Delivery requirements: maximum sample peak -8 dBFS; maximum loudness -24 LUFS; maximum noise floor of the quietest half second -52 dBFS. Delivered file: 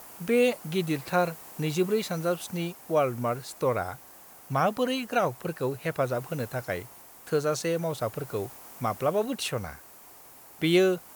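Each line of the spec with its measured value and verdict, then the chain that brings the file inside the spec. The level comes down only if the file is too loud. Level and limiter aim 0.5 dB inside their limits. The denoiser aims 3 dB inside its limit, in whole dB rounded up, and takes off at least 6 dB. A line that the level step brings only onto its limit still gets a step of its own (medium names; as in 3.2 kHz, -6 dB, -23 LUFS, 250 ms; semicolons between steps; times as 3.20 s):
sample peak -11.0 dBFS: pass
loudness -28.5 LUFS: pass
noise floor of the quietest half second -50 dBFS: fail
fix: noise reduction 6 dB, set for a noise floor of -50 dBFS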